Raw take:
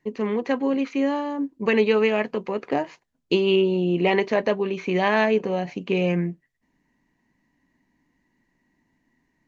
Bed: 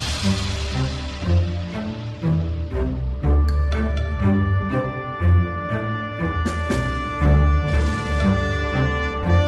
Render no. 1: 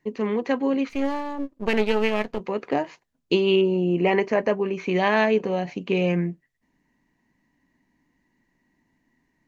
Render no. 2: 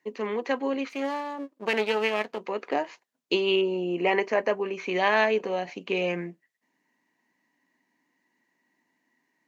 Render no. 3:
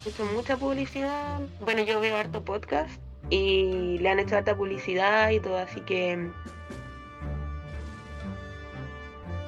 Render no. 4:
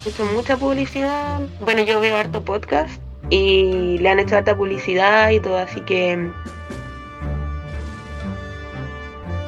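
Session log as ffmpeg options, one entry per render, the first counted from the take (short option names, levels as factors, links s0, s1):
-filter_complex "[0:a]asettb=1/sr,asplit=3[s0][s1][s2];[s0]atrim=end=0.894[s3];[s1]atrim=start=0.89:end=2.4,asetpts=PTS-STARTPTS,afade=t=in:d=0.004:c=qsin,afade=t=out:st=1.506:d=0.004:c=qsin,aeval=exprs='if(lt(val(0),0),0.251*val(0),val(0))':c=same[s4];[s2]atrim=start=2.396[s5];[s3][s4]acrossfade=d=0.004:c1=hsin:c2=qsin[s6];[s6][s5]acrossfade=d=0.004:c1=qsin:c2=hsin,asettb=1/sr,asplit=3[s7][s8][s9];[s7]atrim=end=3.614[s10];[s8]atrim=start=3.61:end=4.8,asetpts=PTS-STARTPTS,afade=t=in:d=0.004:c=qsin,afade=t=out:st=1.186:d=0.004:c=qsin,equalizer=f=3700:t=o:w=0.41:g=-14.5[s11];[s9]atrim=start=4.796[s12];[s10][s11]acrossfade=d=0.004:c1=hsin:c2=qsin[s13];[s13][s12]acrossfade=d=0.004:c1=qsin:c2=hsin"
-af "highpass=230,lowshelf=f=340:g=-9"
-filter_complex "[1:a]volume=0.119[s0];[0:a][s0]amix=inputs=2:normalize=0"
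-af "volume=2.82,alimiter=limit=0.891:level=0:latency=1"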